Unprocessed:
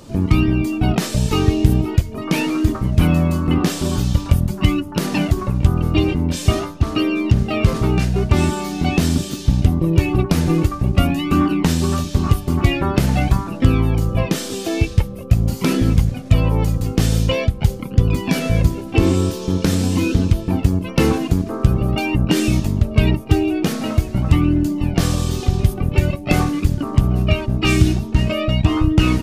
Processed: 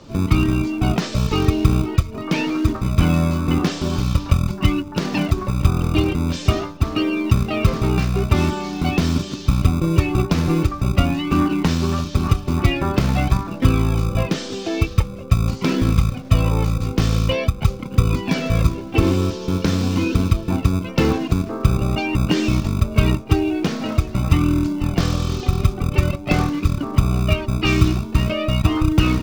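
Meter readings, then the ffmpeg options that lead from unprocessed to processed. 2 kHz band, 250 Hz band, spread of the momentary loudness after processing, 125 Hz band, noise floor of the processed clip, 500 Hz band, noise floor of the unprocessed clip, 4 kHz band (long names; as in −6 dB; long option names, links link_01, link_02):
−1.0 dB, −2.0 dB, 4 LU, −1.5 dB, −32 dBFS, −1.5 dB, −30 dBFS, −1.0 dB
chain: -filter_complex "[0:a]lowpass=frequency=6100:width=0.5412,lowpass=frequency=6100:width=1.3066,acrossover=split=180[link_01][link_02];[link_01]acrusher=samples=36:mix=1:aa=0.000001[link_03];[link_03][link_02]amix=inputs=2:normalize=0,volume=-1.5dB"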